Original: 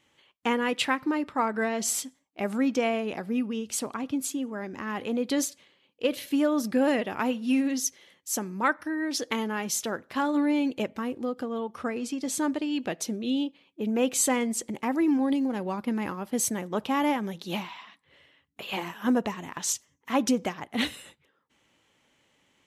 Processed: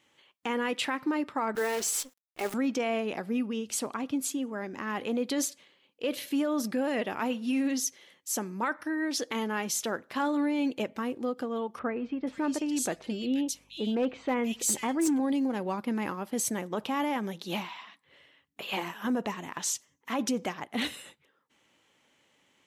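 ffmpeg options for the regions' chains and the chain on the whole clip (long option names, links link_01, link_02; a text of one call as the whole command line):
ffmpeg -i in.wav -filter_complex "[0:a]asettb=1/sr,asplit=3[link_01][link_02][link_03];[link_01]atrim=end=1.554[link_04];[link_02]atrim=start=1.55:end=2.54,asetpts=PTS-STARTPTS,afade=type=in:duration=0.004:curve=qsin,afade=type=out:start_time=0.986:duration=0.004:curve=qsin,highpass=frequency=210:width=0.5412,highpass=frequency=210:width=1.3066,aecho=1:1:2.3:0.52,atrim=end_sample=43659,acrusher=bits=7:dc=4:mix=0:aa=0.000001[link_05];[link_03]atrim=start=2.536[link_06];[link_04][link_05]acrossfade=duration=0.004:curve1=hsin:curve2=qsin[link_07];[link_07][link_06]acrossfade=duration=0.004:curve1=qsin:curve2=hsin,asettb=1/sr,asplit=3[link_08][link_09][link_10];[link_08]atrim=end=11.794[link_11];[link_09]atrim=start=11.79:end=15.2,asetpts=PTS-STARTPTS,afade=type=in:duration=0.004:curve=qsin,afade=type=out:start_time=3.406:duration=0.004:curve=qsin,acrossover=split=2600[link_12][link_13];[link_13]adelay=480[link_14];[link_12][link_14]amix=inputs=2:normalize=0,atrim=end_sample=150381,aeval=exprs='val(0)+0.001*(sin(2*PI*50*n/s)+sin(2*PI*2*50*n/s)/2+sin(2*PI*3*50*n/s)/3+sin(2*PI*4*50*n/s)/4+sin(2*PI*5*50*n/s)/5)':channel_layout=same,asoftclip=type=hard:threshold=-18.5dB[link_15];[link_10]atrim=start=15.196[link_16];[link_11][link_15]acrossfade=duration=0.004:curve1=hsin:curve2=qsin[link_17];[link_17][link_16]acrossfade=duration=0.004:curve1=qsin:curve2=hsin,alimiter=limit=-20.5dB:level=0:latency=1:release=17,lowshelf=frequency=95:gain=-11.5" out.wav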